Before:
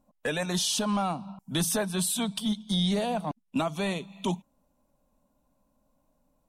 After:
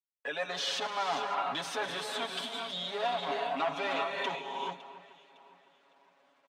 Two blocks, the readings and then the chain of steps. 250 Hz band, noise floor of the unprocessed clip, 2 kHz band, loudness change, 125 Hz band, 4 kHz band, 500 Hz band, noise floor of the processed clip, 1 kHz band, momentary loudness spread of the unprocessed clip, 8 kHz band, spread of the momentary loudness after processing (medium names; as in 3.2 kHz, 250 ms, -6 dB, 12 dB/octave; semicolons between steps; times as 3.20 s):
-17.0 dB, -73 dBFS, +1.5 dB, -4.5 dB, -20.5 dB, -2.5 dB, -2.5 dB, -69 dBFS, +2.0 dB, 7 LU, -14.5 dB, 6 LU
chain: fade-in on the opening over 0.97 s; gated-style reverb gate 440 ms rising, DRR 5 dB; in parallel at +2 dB: compressor with a negative ratio -30 dBFS, ratio -0.5; on the sum: bit crusher 10-bit; hard clipper -22 dBFS, distortion -12 dB; careless resampling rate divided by 2×, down filtered, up hold; band-pass 610–3200 Hz; comb 7.2 ms, depth 88%; on a send: echo whose repeats swap between lows and highs 279 ms, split 2.4 kHz, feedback 59%, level -13.5 dB; on the sum: trim -4 dB